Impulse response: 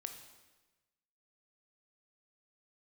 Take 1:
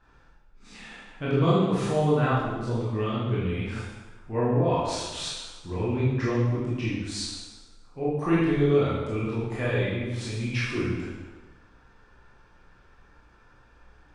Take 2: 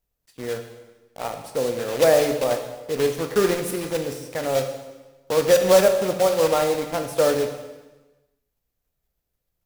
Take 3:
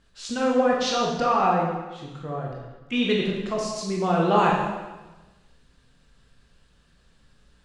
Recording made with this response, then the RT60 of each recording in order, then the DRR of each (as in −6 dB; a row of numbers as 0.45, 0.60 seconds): 2; 1.2, 1.2, 1.2 seconds; −8.0, 5.5, −3.0 decibels